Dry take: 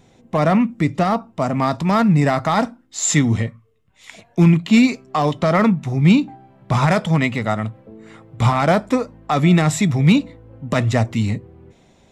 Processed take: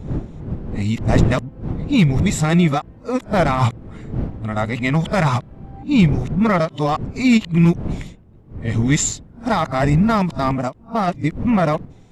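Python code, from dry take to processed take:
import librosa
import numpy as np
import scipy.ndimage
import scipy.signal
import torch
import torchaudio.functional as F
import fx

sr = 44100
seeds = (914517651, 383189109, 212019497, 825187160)

y = x[::-1].copy()
y = fx.dmg_wind(y, sr, seeds[0], corner_hz=170.0, level_db=-26.0)
y = fx.end_taper(y, sr, db_per_s=440.0)
y = F.gain(torch.from_numpy(y), -1.0).numpy()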